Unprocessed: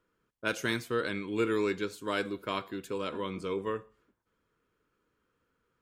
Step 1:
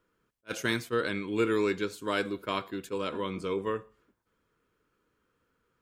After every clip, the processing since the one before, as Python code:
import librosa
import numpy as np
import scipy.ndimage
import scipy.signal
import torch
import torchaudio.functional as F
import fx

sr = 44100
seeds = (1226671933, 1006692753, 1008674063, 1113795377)

y = fx.attack_slew(x, sr, db_per_s=580.0)
y = y * librosa.db_to_amplitude(2.0)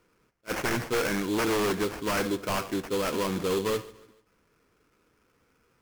y = fx.sample_hold(x, sr, seeds[0], rate_hz=3800.0, jitter_pct=20)
y = fx.fold_sine(y, sr, drive_db=12, ceiling_db=-14.0)
y = fx.echo_feedback(y, sr, ms=145, feedback_pct=43, wet_db=-20.0)
y = y * librosa.db_to_amplitude(-8.5)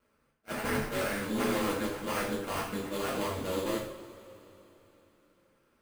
y = np.repeat(scipy.signal.resample_poly(x, 1, 4), 4)[:len(x)]
y = y * np.sin(2.0 * np.pi * 94.0 * np.arange(len(y)) / sr)
y = fx.rev_double_slope(y, sr, seeds[1], early_s=0.45, late_s=3.7, knee_db=-21, drr_db=-5.5)
y = y * librosa.db_to_amplitude(-7.0)